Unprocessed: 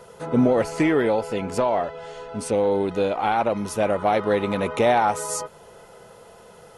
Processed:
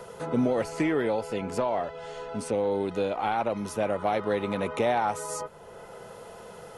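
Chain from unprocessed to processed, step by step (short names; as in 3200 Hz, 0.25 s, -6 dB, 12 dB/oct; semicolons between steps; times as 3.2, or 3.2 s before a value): three-band squash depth 40%; gain -6 dB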